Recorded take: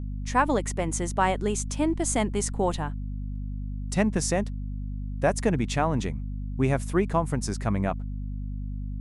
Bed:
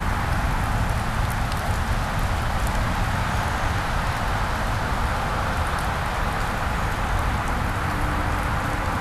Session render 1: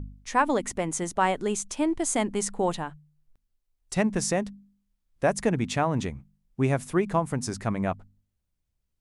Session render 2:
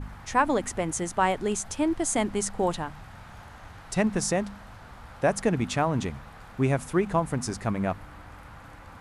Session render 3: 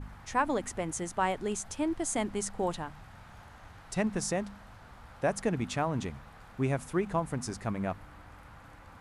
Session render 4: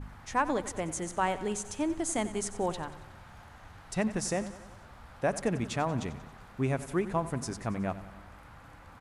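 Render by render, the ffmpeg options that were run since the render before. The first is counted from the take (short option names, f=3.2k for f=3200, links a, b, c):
-af "bandreject=f=50:t=h:w=4,bandreject=f=100:t=h:w=4,bandreject=f=150:t=h:w=4,bandreject=f=200:t=h:w=4,bandreject=f=250:t=h:w=4"
-filter_complex "[1:a]volume=-22dB[a];[0:a][a]amix=inputs=2:normalize=0"
-af "volume=-5.5dB"
-af "aecho=1:1:92|184|276|368|460|552:0.178|0.105|0.0619|0.0365|0.0215|0.0127"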